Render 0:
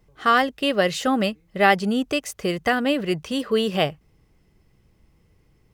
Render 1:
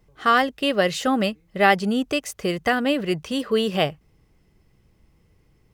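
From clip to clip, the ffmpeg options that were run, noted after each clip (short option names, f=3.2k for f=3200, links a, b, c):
-af anull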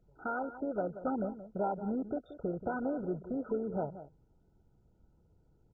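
-filter_complex "[0:a]acompressor=threshold=-25dB:ratio=2.5,asplit=2[a][b];[b]adelay=180.8,volume=-13dB,highshelf=f=4k:g=-4.07[c];[a][c]amix=inputs=2:normalize=0,volume=-7.5dB" -ar 16000 -c:a mp2 -b:a 8k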